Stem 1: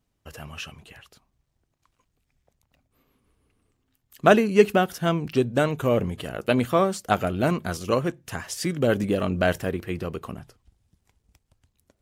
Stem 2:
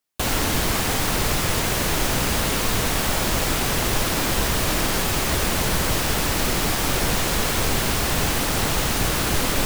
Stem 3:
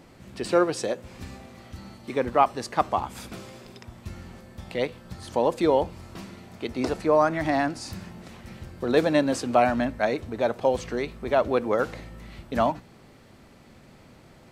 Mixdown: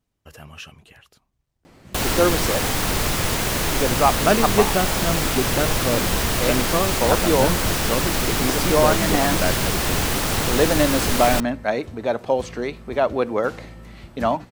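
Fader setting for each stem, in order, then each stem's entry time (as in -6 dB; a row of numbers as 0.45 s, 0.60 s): -2.0 dB, 0.0 dB, +2.0 dB; 0.00 s, 1.75 s, 1.65 s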